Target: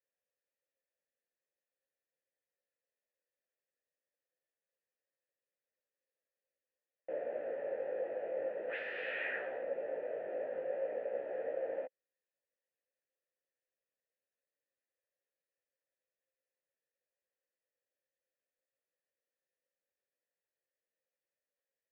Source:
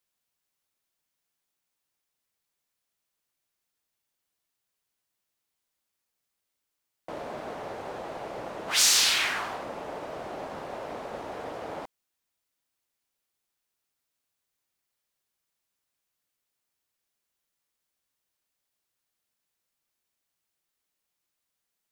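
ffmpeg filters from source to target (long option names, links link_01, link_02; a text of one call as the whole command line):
ffmpeg -i in.wav -filter_complex "[0:a]acrossover=split=2600[link_01][link_02];[link_02]acompressor=threshold=-31dB:ratio=4:attack=1:release=60[link_03];[link_01][link_03]amix=inputs=2:normalize=0,flanger=delay=15:depth=4.6:speed=0.43,asplit=3[link_04][link_05][link_06];[link_04]bandpass=frequency=530:width_type=q:width=8,volume=0dB[link_07];[link_05]bandpass=frequency=1840:width_type=q:width=8,volume=-6dB[link_08];[link_06]bandpass=frequency=2480:width_type=q:width=8,volume=-9dB[link_09];[link_07][link_08][link_09]amix=inputs=3:normalize=0,acrossover=split=740|2200[link_10][link_11][link_12];[link_12]acrusher=bits=4:mix=0:aa=0.000001[link_13];[link_10][link_11][link_13]amix=inputs=3:normalize=0,volume=9.5dB" out.wav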